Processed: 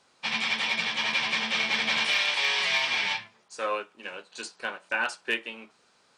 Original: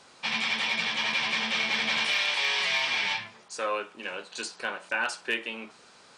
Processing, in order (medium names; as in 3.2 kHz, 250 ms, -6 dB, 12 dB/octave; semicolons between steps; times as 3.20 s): upward expansion 1.5:1, over -48 dBFS; trim +2 dB